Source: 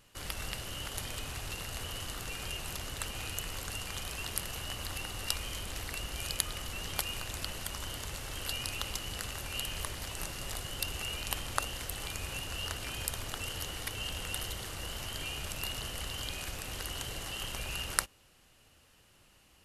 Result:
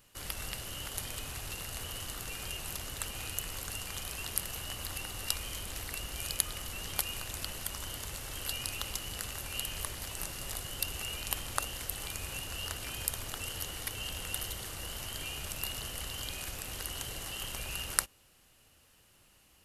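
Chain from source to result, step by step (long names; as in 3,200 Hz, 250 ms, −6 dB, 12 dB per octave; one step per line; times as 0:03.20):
high-shelf EQ 10,000 Hz +9.5 dB
level −2 dB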